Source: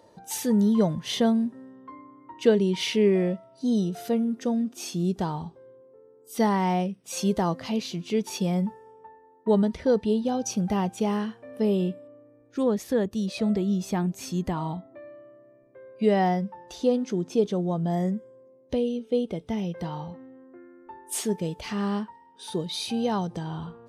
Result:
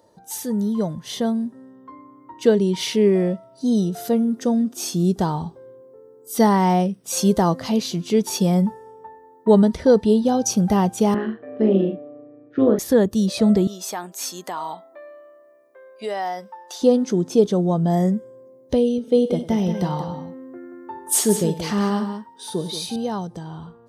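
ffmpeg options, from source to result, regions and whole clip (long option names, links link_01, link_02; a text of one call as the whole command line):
ffmpeg -i in.wav -filter_complex "[0:a]asettb=1/sr,asplit=3[link_01][link_02][link_03];[link_01]atrim=end=11.144[link_04];[link_02]atrim=start=11.14:end=12.79,asetpts=PTS-STARTPTS,afade=type=in:duration=0.004:curve=qsin,afade=type=out:start_time=1.646:duration=0.004:curve=qsin,tremolo=f=150:d=0.621,highpass=frequency=130:width=0.5412,highpass=frequency=130:width=1.3066,equalizer=frequency=310:width_type=q:width=4:gain=5,equalizer=frequency=920:width_type=q:width=4:gain=-10,equalizer=frequency=1800:width_type=q:width=4:gain=3,lowpass=frequency=2900:width=0.5412,lowpass=frequency=2900:width=1.3066,asplit=2[link_05][link_06];[link_06]adelay=41,volume=-6dB[link_07];[link_05][link_07]amix=inputs=2:normalize=0,atrim=end_sample=72765[link_08];[link_03]atrim=start=12.786[link_09];[link_04][link_08]acrossfade=duration=0.004:curve1=hsin:curve2=qsin[link_10];[link_10][link_09]acrossfade=duration=0.004:curve1=qsin:curve2=hsin,asettb=1/sr,asplit=3[link_11][link_12][link_13];[link_11]atrim=end=13.674[link_14];[link_12]atrim=start=13.67:end=16.82,asetpts=PTS-STARTPTS,afade=type=in:duration=0.004:curve=qsin,afade=type=out:start_time=3.146:duration=0.004:curve=qsin,highpass=710,acompressor=threshold=-33dB:ratio=2:attack=3.2:release=140:knee=1:detection=peak[link_15];[link_13]atrim=start=16.816[link_16];[link_14][link_15]acrossfade=duration=0.004:curve1=hsin:curve2=qsin[link_17];[link_17][link_16]acrossfade=duration=0.004:curve1=qsin:curve2=hsin,asettb=1/sr,asplit=3[link_18][link_19][link_20];[link_18]atrim=end=18.984[link_21];[link_19]atrim=start=18.98:end=22.96,asetpts=PTS-STARTPTS,afade=type=in:duration=0.004:curve=qsin,afade=type=out:start_time=3.976:duration=0.004:curve=qsin,highpass=84,aecho=1:1:58|97|180:0.15|0.158|0.355,atrim=end_sample=175518[link_22];[link_20]atrim=start=22.956[link_23];[link_21][link_22]acrossfade=duration=0.004:curve1=hsin:curve2=qsin[link_24];[link_24][link_23]acrossfade=duration=0.004:curve1=qsin:curve2=hsin,highshelf=frequency=8300:gain=6.5,dynaudnorm=framelen=170:gausssize=21:maxgain=11.5dB,equalizer=frequency=2500:width_type=o:width=0.71:gain=-6.5,volume=-1.5dB" out.wav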